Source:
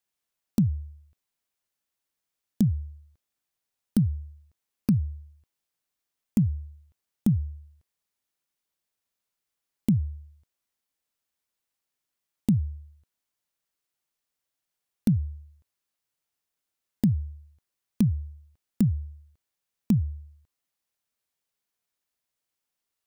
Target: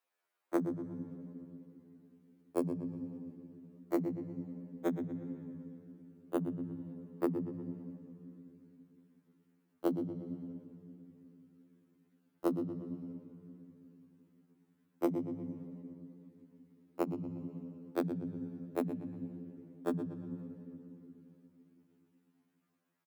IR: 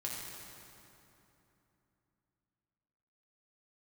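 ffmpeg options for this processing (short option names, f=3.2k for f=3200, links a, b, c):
-filter_complex "[0:a]asplit=2[a][b];[1:a]atrim=start_sample=2205,lowpass=4.4k[c];[b][c]afir=irnorm=-1:irlink=0,volume=-15dB[d];[a][d]amix=inputs=2:normalize=0,asetrate=62367,aresample=44100,atempo=0.707107,highpass=110,highshelf=f=7.7k:g=5,asplit=2[e][f];[f]adelay=118,lowpass=f=4.2k:p=1,volume=-6dB,asplit=2[g][h];[h]adelay=118,lowpass=f=4.2k:p=1,volume=0.32,asplit=2[i][j];[j]adelay=118,lowpass=f=4.2k:p=1,volume=0.32,asplit=2[k][l];[l]adelay=118,lowpass=f=4.2k:p=1,volume=0.32[m];[e][g][i][k][m]amix=inputs=5:normalize=0,acompressor=threshold=-30dB:ratio=4,acrossover=split=380 2200:gain=0.126 1 0.158[n][o][p];[n][o][p]amix=inputs=3:normalize=0,afftfilt=real='re*2*eq(mod(b,4),0)':imag='im*2*eq(mod(b,4),0)':win_size=2048:overlap=0.75,volume=10.5dB"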